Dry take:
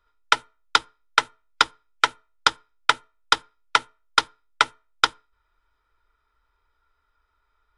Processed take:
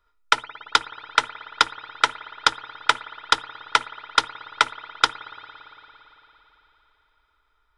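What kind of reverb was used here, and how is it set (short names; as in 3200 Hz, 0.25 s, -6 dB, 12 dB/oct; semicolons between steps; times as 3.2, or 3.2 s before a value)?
spring tank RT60 3.9 s, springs 56 ms, chirp 80 ms, DRR 14 dB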